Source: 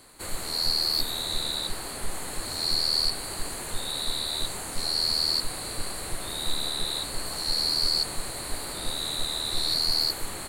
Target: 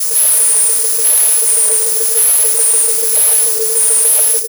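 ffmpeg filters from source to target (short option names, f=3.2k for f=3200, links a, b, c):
-af "areverse,asoftclip=type=tanh:threshold=-23.5dB,aecho=1:1:238:0.531,asetrate=103194,aresample=44100,asubboost=boost=4.5:cutoff=59,aexciter=amount=10.9:drive=8.9:freq=4.3k,acontrast=86,afreqshift=430,volume=-6.5dB"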